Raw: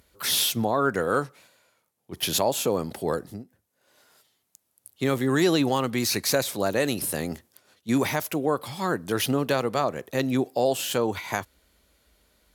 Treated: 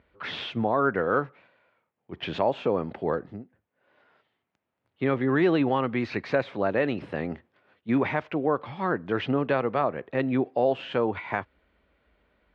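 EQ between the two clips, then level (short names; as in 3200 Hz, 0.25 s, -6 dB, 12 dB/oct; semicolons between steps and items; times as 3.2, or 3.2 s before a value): LPF 2600 Hz 24 dB/oct; low shelf 120 Hz -4 dB; 0.0 dB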